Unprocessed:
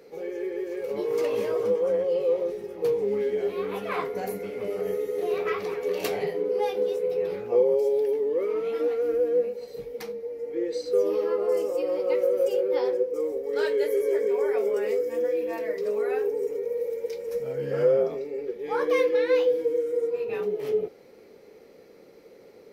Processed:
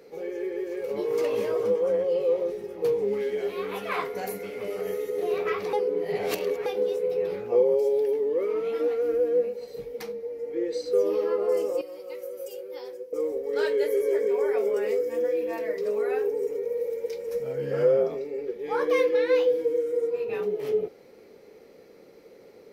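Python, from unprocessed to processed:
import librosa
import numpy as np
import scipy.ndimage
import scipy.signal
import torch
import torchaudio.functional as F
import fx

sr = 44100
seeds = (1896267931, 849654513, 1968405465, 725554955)

y = fx.tilt_shelf(x, sr, db=-3.5, hz=830.0, at=(3.13, 5.1))
y = fx.pre_emphasis(y, sr, coefficient=0.8, at=(11.81, 13.13))
y = fx.edit(y, sr, fx.reverse_span(start_s=5.73, length_s=0.93), tone=tone)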